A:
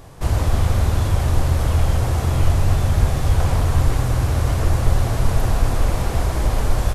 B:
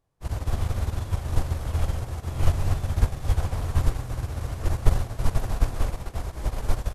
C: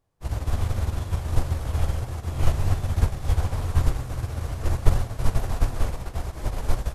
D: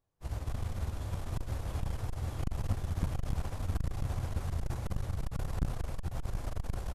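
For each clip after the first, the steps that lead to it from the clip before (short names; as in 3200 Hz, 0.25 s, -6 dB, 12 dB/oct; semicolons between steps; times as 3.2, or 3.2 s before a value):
upward expander 2.5:1, over -32 dBFS
flange 1.4 Hz, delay 7.7 ms, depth 9.6 ms, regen -54%; gain +5 dB
on a send: bouncing-ball echo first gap 0.72 s, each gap 0.85×, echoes 5; on the sum: core saturation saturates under 250 Hz; gain -8.5 dB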